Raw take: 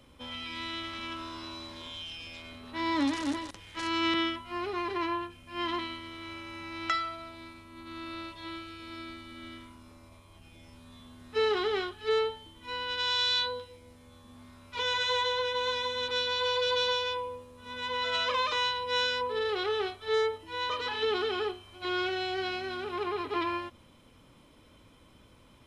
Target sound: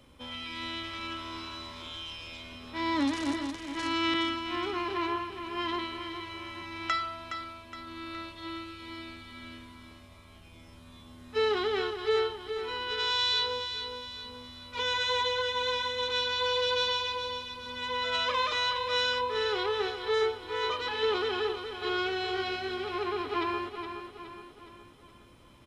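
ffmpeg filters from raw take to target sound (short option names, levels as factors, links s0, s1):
-af "aecho=1:1:417|834|1251|1668|2085:0.376|0.18|0.0866|0.0416|0.02"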